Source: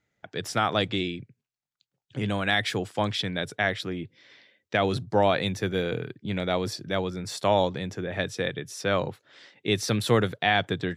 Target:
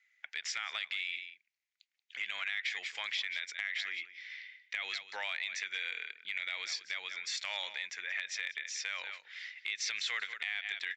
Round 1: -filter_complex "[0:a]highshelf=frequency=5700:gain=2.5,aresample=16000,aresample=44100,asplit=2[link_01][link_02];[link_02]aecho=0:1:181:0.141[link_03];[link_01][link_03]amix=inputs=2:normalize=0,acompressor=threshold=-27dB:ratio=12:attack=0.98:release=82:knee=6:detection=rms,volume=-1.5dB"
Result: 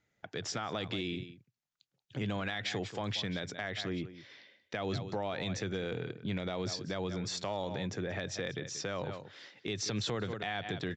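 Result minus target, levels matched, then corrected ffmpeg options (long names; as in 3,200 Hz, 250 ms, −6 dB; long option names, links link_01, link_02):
2,000 Hz band −6.0 dB
-filter_complex "[0:a]highpass=frequency=2100:width_type=q:width=4.5,highshelf=frequency=5700:gain=2.5,aresample=16000,aresample=44100,asplit=2[link_01][link_02];[link_02]aecho=0:1:181:0.141[link_03];[link_01][link_03]amix=inputs=2:normalize=0,acompressor=threshold=-27dB:ratio=12:attack=0.98:release=82:knee=6:detection=rms,volume=-1.5dB"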